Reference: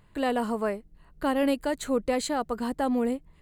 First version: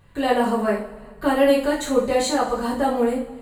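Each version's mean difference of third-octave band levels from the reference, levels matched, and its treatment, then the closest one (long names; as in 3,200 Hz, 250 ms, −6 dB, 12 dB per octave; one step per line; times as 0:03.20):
5.0 dB: coupled-rooms reverb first 0.39 s, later 1.8 s, from −18 dB, DRR −6.5 dB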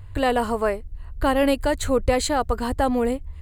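2.5 dB: low shelf with overshoot 130 Hz +12 dB, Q 3
level +7 dB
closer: second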